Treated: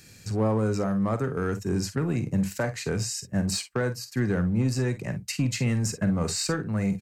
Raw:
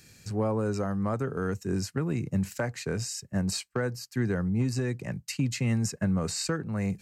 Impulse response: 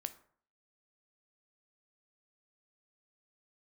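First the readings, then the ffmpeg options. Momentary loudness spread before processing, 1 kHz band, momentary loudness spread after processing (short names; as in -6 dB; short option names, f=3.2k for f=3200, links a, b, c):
4 LU, +2.5 dB, 4 LU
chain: -filter_complex "[0:a]asplit=2[a][b];[b]asoftclip=type=hard:threshold=-28.5dB,volume=-6.5dB[c];[a][c]amix=inputs=2:normalize=0,aecho=1:1:46|56:0.251|0.168"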